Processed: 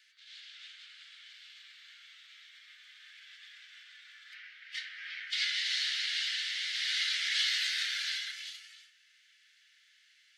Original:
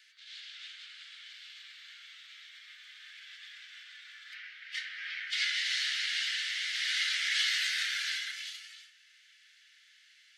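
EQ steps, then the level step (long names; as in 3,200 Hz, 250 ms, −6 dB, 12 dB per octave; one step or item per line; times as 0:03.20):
dynamic equaliser 4,100 Hz, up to +5 dB, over −43 dBFS, Q 1.4
−3.5 dB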